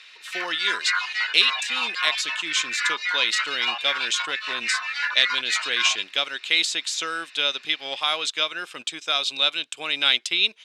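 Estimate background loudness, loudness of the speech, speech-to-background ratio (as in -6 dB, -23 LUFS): -26.0 LUFS, -23.5 LUFS, 2.5 dB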